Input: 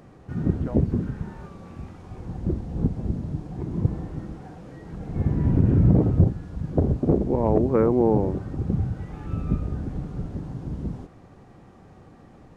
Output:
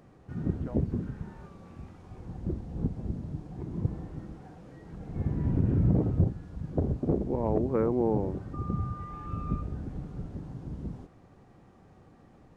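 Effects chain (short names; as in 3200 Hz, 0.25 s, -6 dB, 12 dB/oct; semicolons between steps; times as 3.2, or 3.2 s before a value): 8.53–9.61 whine 1200 Hz -34 dBFS; gain -7 dB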